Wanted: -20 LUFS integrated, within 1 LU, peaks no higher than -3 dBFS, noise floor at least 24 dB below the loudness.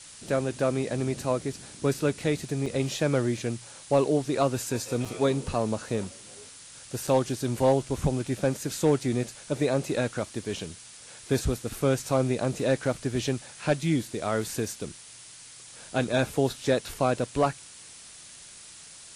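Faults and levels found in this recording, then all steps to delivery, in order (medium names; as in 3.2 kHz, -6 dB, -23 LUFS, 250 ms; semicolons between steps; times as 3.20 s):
dropouts 3; longest dropout 4.4 ms; noise floor -48 dBFS; noise floor target -52 dBFS; loudness -28.0 LUFS; peak level -12.0 dBFS; loudness target -20.0 LUFS
-> interpolate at 2.66/5.05/7.07 s, 4.4 ms; noise print and reduce 6 dB; trim +8 dB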